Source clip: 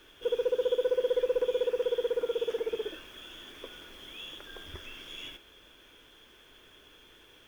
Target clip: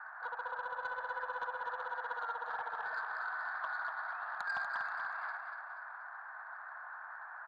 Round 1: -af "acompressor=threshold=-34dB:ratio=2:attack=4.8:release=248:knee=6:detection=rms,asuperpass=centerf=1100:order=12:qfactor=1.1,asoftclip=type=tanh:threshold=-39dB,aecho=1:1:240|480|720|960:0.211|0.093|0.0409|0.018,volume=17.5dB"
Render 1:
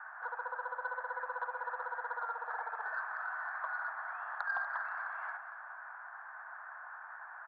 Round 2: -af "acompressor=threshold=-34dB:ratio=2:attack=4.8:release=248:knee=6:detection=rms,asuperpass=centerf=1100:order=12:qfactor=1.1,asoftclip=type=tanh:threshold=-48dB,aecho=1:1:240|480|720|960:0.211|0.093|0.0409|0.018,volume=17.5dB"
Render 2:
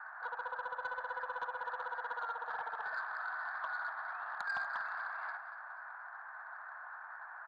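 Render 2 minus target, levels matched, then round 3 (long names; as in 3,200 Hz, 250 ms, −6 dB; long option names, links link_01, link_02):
echo-to-direct −7 dB
-af "acompressor=threshold=-34dB:ratio=2:attack=4.8:release=248:knee=6:detection=rms,asuperpass=centerf=1100:order=12:qfactor=1.1,asoftclip=type=tanh:threshold=-48dB,aecho=1:1:240|480|720|960|1200:0.473|0.208|0.0916|0.0403|0.0177,volume=17.5dB"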